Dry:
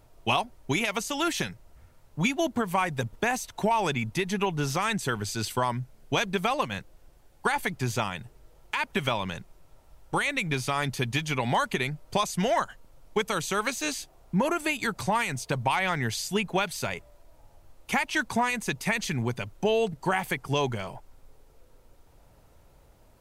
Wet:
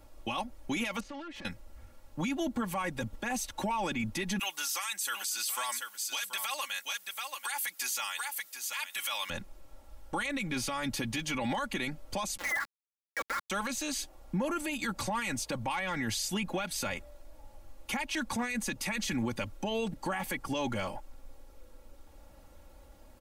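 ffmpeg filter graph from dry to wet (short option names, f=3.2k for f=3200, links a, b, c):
-filter_complex "[0:a]asettb=1/sr,asplit=3[a][b][c];[a]atrim=end=1.004[d];[b]atrim=start=1:end=1.45,asetpts=PTS-STARTPTS,afade=t=in:d=0.004:c=qsin,afade=t=out:st=0.446:d=0.004:c=qsin,lowpass=2.2k,acompressor=threshold=-38dB:ratio=16:attack=3.2:release=140:knee=1:detection=peak,aeval=exprs='(tanh(112*val(0)+0.45)-tanh(0.45))/112':c=same[e];[c]atrim=start=1.446[f];[d][e]acrossfade=d=0.004:c1=hsin:c2=qsin[g];[g][f]acrossfade=d=0.004:c1=qsin:c2=hsin,asettb=1/sr,asplit=3[h][i][j];[h]atrim=end=4.394[k];[i]atrim=start=4.39:end=9.3,asetpts=PTS-STARTPTS,afade=t=in:d=0.004:c=qsin,afade=t=out:st=4.906:d=0.004:c=qsin,highpass=1.2k,aemphasis=mode=production:type=75fm,aecho=1:1:732:0.266,atrim=end_sample=216531[l];[j]atrim=start=9.296[m];[k][l]acrossfade=d=0.004:c1=hsin:c2=qsin[n];[n][m]acrossfade=d=0.004:c1=qsin:c2=hsin,asettb=1/sr,asplit=3[o][p][q];[o]atrim=end=12.374[r];[p]atrim=start=12.37:end=13.5,asetpts=PTS-STARTPTS,afade=t=in:d=0.004:c=qsin,afade=t=out:st=1.126:d=0.004:c=qsin,highpass=f=640:w=0.5412,highpass=f=640:w=1.3066,lowpass=f=2.3k:t=q:w=0.5098,lowpass=f=2.3k:t=q:w=0.6013,lowpass=f=2.3k:t=q:w=0.9,lowpass=f=2.3k:t=q:w=2.563,afreqshift=-2700,aeval=exprs='val(0)*gte(abs(val(0)),0.0237)':c=same[s];[q]atrim=start=13.496[t];[r][s]acrossfade=d=0.004:c1=hsin:c2=qsin[u];[u][t]acrossfade=d=0.004:c1=qsin:c2=hsin,aecho=1:1:3.6:0.74,acrossover=split=220[v][w];[w]acompressor=threshold=-27dB:ratio=3[x];[v][x]amix=inputs=2:normalize=0,alimiter=level_in=0.5dB:limit=-24dB:level=0:latency=1:release=12,volume=-0.5dB"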